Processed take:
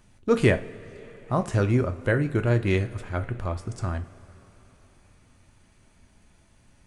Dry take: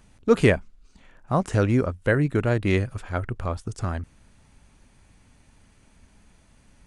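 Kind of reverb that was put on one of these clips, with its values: two-slope reverb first 0.32 s, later 4.4 s, from -20 dB, DRR 7.5 dB; gain -2.5 dB

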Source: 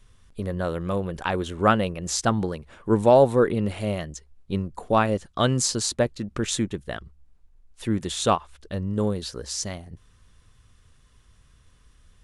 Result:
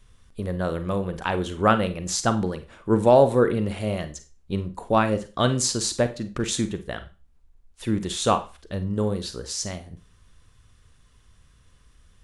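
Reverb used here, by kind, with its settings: Schroeder reverb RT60 0.31 s, combs from 33 ms, DRR 10 dB

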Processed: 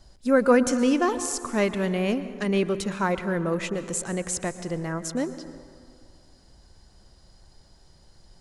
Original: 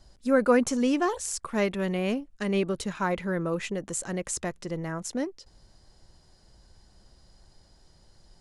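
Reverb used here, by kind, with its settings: plate-style reverb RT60 2.1 s, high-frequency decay 0.5×, pre-delay 0.105 s, DRR 12 dB; gain +2.5 dB

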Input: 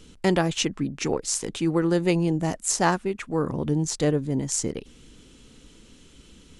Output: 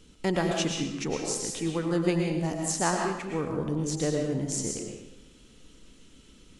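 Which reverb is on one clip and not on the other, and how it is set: digital reverb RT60 0.88 s, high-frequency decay 0.95×, pre-delay 75 ms, DRR 1 dB; gain -6 dB

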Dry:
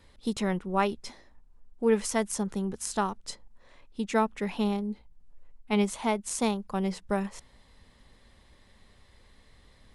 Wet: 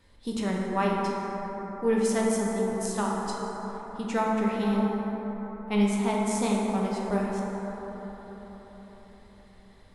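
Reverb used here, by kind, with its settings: plate-style reverb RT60 4.8 s, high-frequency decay 0.3×, DRR -3.5 dB; gain -3.5 dB

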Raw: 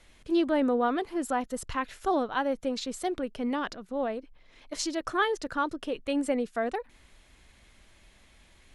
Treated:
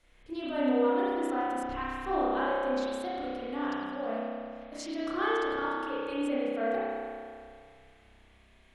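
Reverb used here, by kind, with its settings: spring tank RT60 2.2 s, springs 31 ms, chirp 80 ms, DRR -9.5 dB; gain -11 dB

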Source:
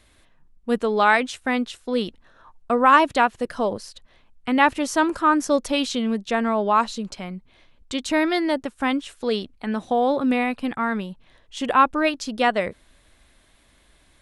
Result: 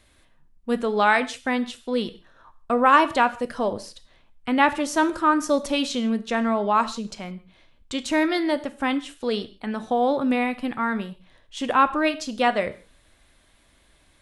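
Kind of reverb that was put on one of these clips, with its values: non-linear reverb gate 0.19 s falling, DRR 11 dB; gain -1.5 dB

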